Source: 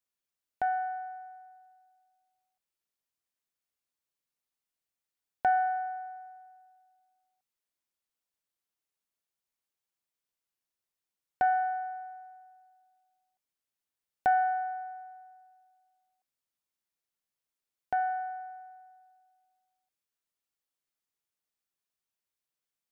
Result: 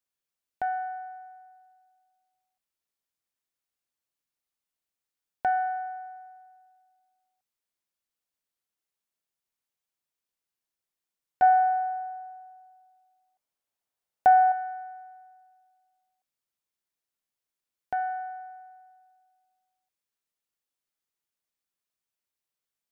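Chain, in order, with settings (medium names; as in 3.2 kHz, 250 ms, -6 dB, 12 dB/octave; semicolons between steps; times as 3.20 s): 11.42–14.52 s: peaking EQ 710 Hz +7.5 dB 1.2 oct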